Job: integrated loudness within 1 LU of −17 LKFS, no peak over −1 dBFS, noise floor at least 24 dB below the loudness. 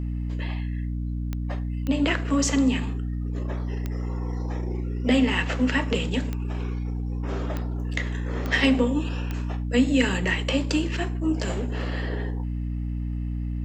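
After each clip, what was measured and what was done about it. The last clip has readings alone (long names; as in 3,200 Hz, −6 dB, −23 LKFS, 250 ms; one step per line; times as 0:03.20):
number of clicks 7; mains hum 60 Hz; hum harmonics up to 300 Hz; level of the hum −26 dBFS; integrated loudness −26.5 LKFS; sample peak −8.0 dBFS; target loudness −17.0 LKFS
→ click removal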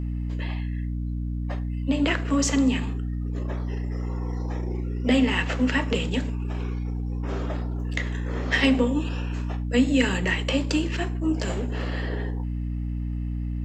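number of clicks 0; mains hum 60 Hz; hum harmonics up to 300 Hz; level of the hum −26 dBFS
→ hum removal 60 Hz, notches 5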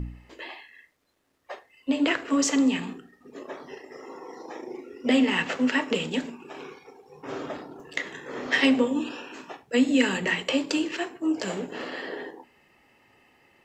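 mains hum none found; integrated loudness −26.0 LKFS; sample peak −8.5 dBFS; target loudness −17.0 LKFS
→ level +9 dB
brickwall limiter −1 dBFS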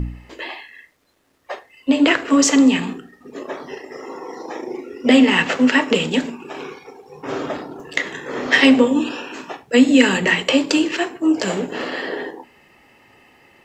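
integrated loudness −17.0 LKFS; sample peak −1.0 dBFS; background noise floor −54 dBFS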